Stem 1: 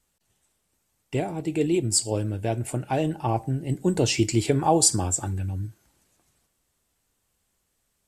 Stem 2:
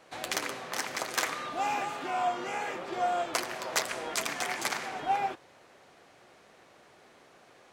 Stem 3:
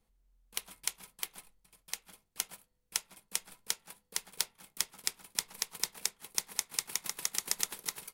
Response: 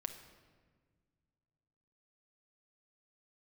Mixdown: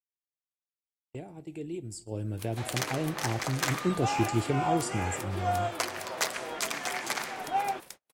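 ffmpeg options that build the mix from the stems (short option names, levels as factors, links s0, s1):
-filter_complex "[0:a]acrossover=split=460[s0][s1];[s1]acompressor=threshold=0.02:ratio=3[s2];[s0][s2]amix=inputs=2:normalize=0,volume=0.473,afade=t=in:st=1.86:d=0.51:silence=0.375837,asplit=2[s3][s4];[s4]volume=0.224[s5];[1:a]adelay=2450,volume=0.944[s6];[2:a]acompressor=threshold=0.00501:ratio=2,asoftclip=type=tanh:threshold=0.0237,adelay=1850,volume=1,asplit=2[s7][s8];[s8]volume=0.355[s9];[3:a]atrim=start_sample=2205[s10];[s5][s9]amix=inputs=2:normalize=0[s11];[s11][s10]afir=irnorm=-1:irlink=0[s12];[s3][s6][s7][s12]amix=inputs=4:normalize=0,agate=range=0.0112:threshold=0.00501:ratio=16:detection=peak"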